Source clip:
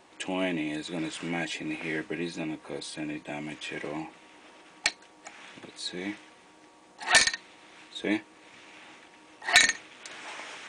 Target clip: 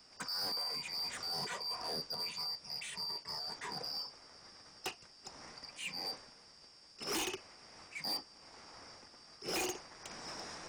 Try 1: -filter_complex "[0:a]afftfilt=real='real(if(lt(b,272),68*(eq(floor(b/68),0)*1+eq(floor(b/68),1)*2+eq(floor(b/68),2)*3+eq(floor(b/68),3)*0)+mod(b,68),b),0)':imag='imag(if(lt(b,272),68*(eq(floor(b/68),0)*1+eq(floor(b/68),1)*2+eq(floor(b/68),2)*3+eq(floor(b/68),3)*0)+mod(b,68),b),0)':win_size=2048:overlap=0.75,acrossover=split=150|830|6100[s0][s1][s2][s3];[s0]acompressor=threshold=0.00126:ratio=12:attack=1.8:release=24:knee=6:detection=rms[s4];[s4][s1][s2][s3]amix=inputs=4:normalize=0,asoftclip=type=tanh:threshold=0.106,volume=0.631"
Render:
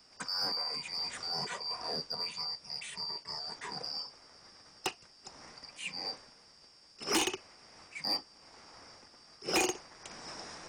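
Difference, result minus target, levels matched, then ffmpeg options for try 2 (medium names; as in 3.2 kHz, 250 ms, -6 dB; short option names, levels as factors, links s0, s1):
saturation: distortion -6 dB
-filter_complex "[0:a]afftfilt=real='real(if(lt(b,272),68*(eq(floor(b/68),0)*1+eq(floor(b/68),1)*2+eq(floor(b/68),2)*3+eq(floor(b/68),3)*0)+mod(b,68),b),0)':imag='imag(if(lt(b,272),68*(eq(floor(b/68),0)*1+eq(floor(b/68),1)*2+eq(floor(b/68),2)*3+eq(floor(b/68),3)*0)+mod(b,68),b),0)':win_size=2048:overlap=0.75,acrossover=split=150|830|6100[s0][s1][s2][s3];[s0]acompressor=threshold=0.00126:ratio=12:attack=1.8:release=24:knee=6:detection=rms[s4];[s4][s1][s2][s3]amix=inputs=4:normalize=0,asoftclip=type=tanh:threshold=0.0316,volume=0.631"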